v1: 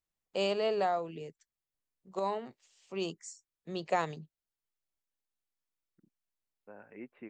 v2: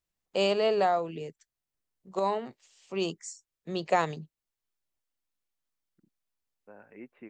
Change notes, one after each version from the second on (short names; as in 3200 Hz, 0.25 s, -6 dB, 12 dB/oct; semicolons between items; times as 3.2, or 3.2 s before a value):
first voice +5.0 dB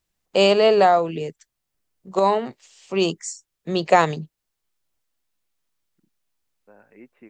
first voice +10.0 dB